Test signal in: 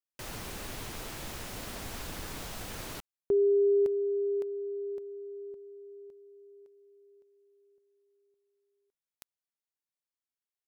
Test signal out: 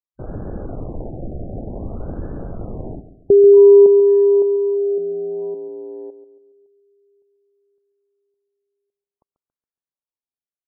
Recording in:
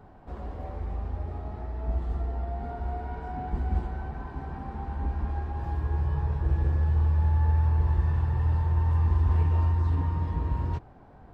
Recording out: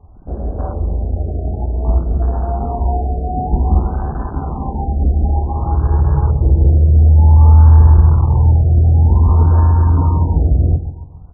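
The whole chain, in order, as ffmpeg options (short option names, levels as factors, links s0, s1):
-filter_complex "[0:a]lowpass=2300,apsyclip=8.91,afwtdn=0.126,asplit=2[s0][s1];[s1]adelay=139,lowpass=f=980:p=1,volume=0.251,asplit=2[s2][s3];[s3]adelay=139,lowpass=f=980:p=1,volume=0.45,asplit=2[s4][s5];[s5]adelay=139,lowpass=f=980:p=1,volume=0.45,asplit=2[s6][s7];[s7]adelay=139,lowpass=f=980:p=1,volume=0.45,asplit=2[s8][s9];[s9]adelay=139,lowpass=f=980:p=1,volume=0.45[s10];[s2][s4][s6][s8][s10]amix=inputs=5:normalize=0[s11];[s0][s11]amix=inputs=2:normalize=0,afftfilt=real='re*lt(b*sr/1024,770*pow(1800/770,0.5+0.5*sin(2*PI*0.54*pts/sr)))':imag='im*lt(b*sr/1024,770*pow(1800/770,0.5+0.5*sin(2*PI*0.54*pts/sr)))':win_size=1024:overlap=0.75,volume=0.631"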